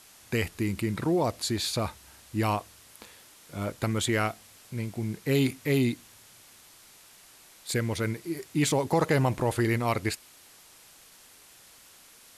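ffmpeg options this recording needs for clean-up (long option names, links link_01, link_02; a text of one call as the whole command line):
ffmpeg -i in.wav -af "afwtdn=0.0025" out.wav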